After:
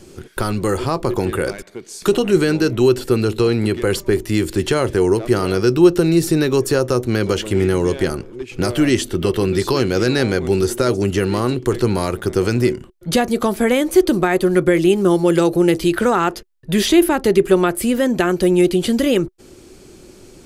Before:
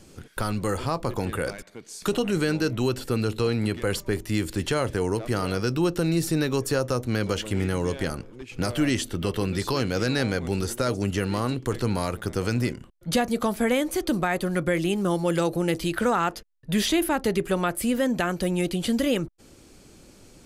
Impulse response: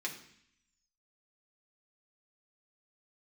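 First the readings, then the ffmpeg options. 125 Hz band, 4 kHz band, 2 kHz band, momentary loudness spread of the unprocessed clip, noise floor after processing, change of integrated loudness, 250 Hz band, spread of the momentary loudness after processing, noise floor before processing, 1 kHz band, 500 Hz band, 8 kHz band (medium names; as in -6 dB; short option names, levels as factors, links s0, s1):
+6.0 dB, +6.0 dB, +6.0 dB, 5 LU, -44 dBFS, +8.5 dB, +9.0 dB, 7 LU, -51 dBFS, +6.0 dB, +10.5 dB, +6.0 dB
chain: -af "equalizer=f=370:t=o:w=0.25:g=11,volume=2"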